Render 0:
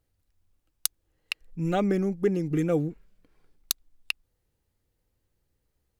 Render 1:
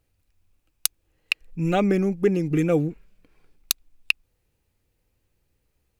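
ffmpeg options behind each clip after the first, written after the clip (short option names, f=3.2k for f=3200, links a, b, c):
-af "equalizer=f=2.5k:w=5.1:g=7.5,volume=4dB"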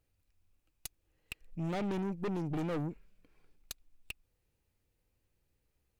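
-af "aeval=exprs='(tanh(22.4*val(0)+0.4)-tanh(0.4))/22.4':c=same,volume=-5.5dB"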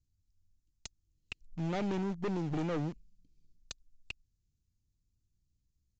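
-filter_complex "[0:a]acrossover=split=260|4400[a][b][c];[b]aeval=exprs='val(0)*gte(abs(val(0)),0.00398)':c=same[d];[a][d][c]amix=inputs=3:normalize=0,aresample=16000,aresample=44100,volume=1dB"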